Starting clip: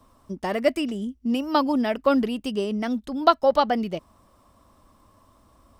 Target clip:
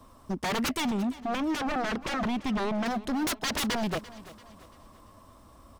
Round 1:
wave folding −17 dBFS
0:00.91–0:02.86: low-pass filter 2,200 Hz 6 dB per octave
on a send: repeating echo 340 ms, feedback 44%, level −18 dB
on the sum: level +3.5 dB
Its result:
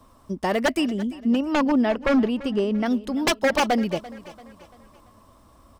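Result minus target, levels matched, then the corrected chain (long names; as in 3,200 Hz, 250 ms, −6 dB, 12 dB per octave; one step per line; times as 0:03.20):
wave folding: distortion −14 dB
wave folding −27.5 dBFS
0:00.91–0:02.86: low-pass filter 2,200 Hz 6 dB per octave
on a send: repeating echo 340 ms, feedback 44%, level −18 dB
on the sum: level +3.5 dB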